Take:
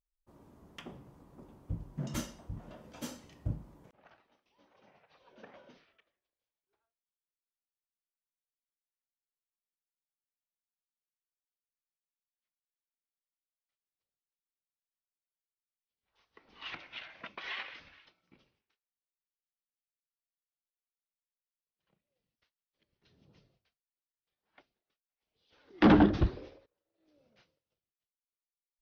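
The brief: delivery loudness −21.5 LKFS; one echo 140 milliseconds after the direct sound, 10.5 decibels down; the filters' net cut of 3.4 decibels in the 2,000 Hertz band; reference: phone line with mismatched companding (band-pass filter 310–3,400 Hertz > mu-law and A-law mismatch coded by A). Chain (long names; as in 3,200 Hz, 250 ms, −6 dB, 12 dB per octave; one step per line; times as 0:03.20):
band-pass filter 310–3,400 Hz
parametric band 2,000 Hz −4 dB
single-tap delay 140 ms −10.5 dB
mu-law and A-law mismatch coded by A
level +11 dB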